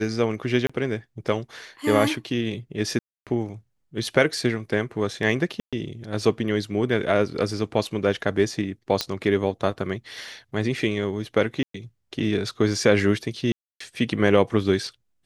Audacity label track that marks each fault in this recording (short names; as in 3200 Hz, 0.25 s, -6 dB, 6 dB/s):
0.670000	0.690000	gap 25 ms
2.990000	3.270000	gap 0.277 s
5.600000	5.730000	gap 0.126 s
9.010000	9.010000	pop -8 dBFS
11.630000	11.740000	gap 0.113 s
13.520000	13.800000	gap 0.284 s